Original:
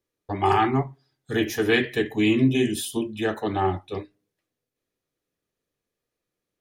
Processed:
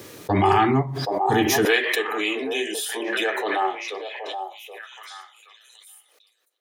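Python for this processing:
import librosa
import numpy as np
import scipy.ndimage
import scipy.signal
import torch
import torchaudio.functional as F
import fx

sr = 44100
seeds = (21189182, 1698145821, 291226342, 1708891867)

y = fx.highpass(x, sr, hz=fx.steps((0.0, 85.0), (1.65, 450.0)), slope=24)
y = fx.echo_stepped(y, sr, ms=774, hz=640.0, octaves=1.4, feedback_pct=70, wet_db=-6.5)
y = fx.pre_swell(y, sr, db_per_s=25.0)
y = y * librosa.db_to_amplitude(2.0)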